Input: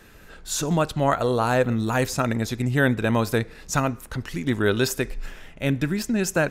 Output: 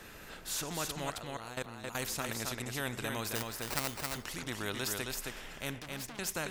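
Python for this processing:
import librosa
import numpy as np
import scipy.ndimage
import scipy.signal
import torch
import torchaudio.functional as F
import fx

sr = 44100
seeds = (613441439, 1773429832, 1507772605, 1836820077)

p1 = fx.level_steps(x, sr, step_db=19, at=(1.1, 1.95))
p2 = fx.sample_hold(p1, sr, seeds[0], rate_hz=3300.0, jitter_pct=0, at=(3.35, 4.05))
p3 = fx.tube_stage(p2, sr, drive_db=38.0, bias=0.7, at=(5.79, 6.19))
p4 = p3 + fx.echo_single(p3, sr, ms=268, db=-7.0, dry=0)
p5 = fx.spectral_comp(p4, sr, ratio=2.0)
y = p5 * 10.0 ** (-7.0 / 20.0)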